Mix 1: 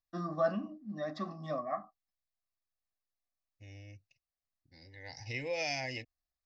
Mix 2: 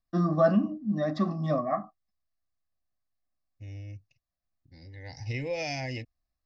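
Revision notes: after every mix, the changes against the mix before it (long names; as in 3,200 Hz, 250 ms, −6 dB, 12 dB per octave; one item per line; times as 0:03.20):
first voice +5.0 dB
master: add low-shelf EQ 360 Hz +11.5 dB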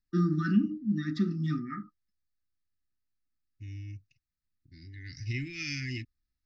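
master: add linear-phase brick-wall band-stop 390–1,200 Hz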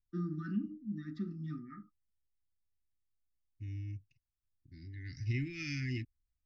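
first voice −10.5 dB
master: add high-shelf EQ 2,000 Hz −9 dB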